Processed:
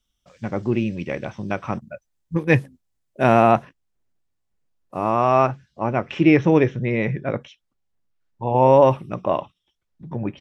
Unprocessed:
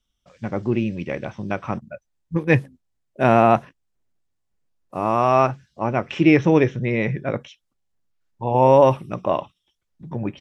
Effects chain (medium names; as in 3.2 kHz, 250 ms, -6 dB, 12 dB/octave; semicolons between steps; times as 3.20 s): treble shelf 5.5 kHz +4.5 dB, from 3.51 s -2.5 dB, from 5.10 s -7.5 dB